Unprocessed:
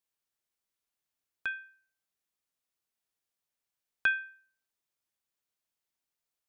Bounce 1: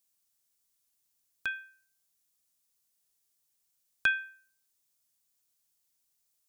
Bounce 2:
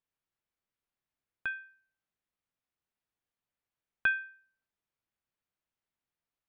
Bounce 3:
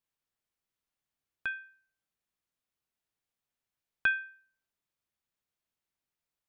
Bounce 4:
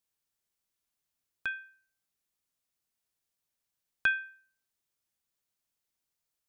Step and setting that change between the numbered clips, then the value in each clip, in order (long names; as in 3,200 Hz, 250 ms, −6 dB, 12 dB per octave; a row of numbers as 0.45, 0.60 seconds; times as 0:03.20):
bass and treble, treble: +13, −14, −5, +3 decibels